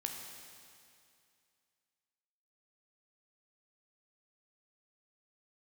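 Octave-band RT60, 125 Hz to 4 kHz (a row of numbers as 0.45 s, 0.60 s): 2.4 s, 2.4 s, 2.4 s, 2.4 s, 2.4 s, 2.4 s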